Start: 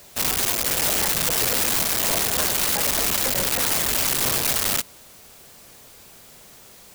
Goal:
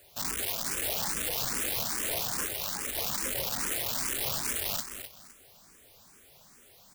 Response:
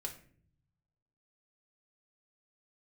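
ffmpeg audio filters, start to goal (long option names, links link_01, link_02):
-filter_complex "[0:a]asettb=1/sr,asplit=3[link_01][link_02][link_03];[link_01]atrim=end=2.454[link_04];[link_02]atrim=start=2.45:end=2.96,asetpts=PTS-STARTPTS,afade=type=in:duration=0.004:curve=qsin,afade=type=out:start_time=0.506:duration=0.004:curve=qsin,tremolo=f=100:d=0.621[link_05];[link_03]atrim=start=2.956[link_06];[link_04][link_05]acrossfade=duration=0.004:curve1=hsin:curve2=qsin[link_07];[link_07][link_06]acrossfade=duration=0.004:curve1=qsin:curve2=hsin,asplit=2[link_08][link_09];[link_09]aecho=0:1:256|512|768:0.355|0.0923|0.024[link_10];[link_08][link_10]amix=inputs=2:normalize=0,asplit=2[link_11][link_12];[link_12]afreqshift=2.4[link_13];[link_11][link_13]amix=inputs=2:normalize=1,volume=-7.5dB"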